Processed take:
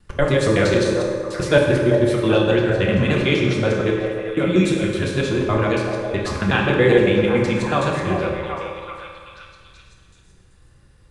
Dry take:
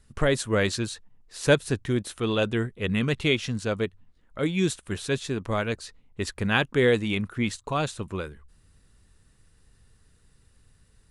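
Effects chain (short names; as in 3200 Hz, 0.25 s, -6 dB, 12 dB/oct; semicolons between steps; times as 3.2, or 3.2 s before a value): local time reversal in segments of 93 ms; LPF 3500 Hz 6 dB/oct; in parallel at -2 dB: limiter -18 dBFS, peak gain reduction 10 dB; on the sum: delay with a stepping band-pass 0.385 s, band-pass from 610 Hz, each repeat 0.7 oct, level -4 dB; reverb RT60 1.8 s, pre-delay 3 ms, DRR -2 dB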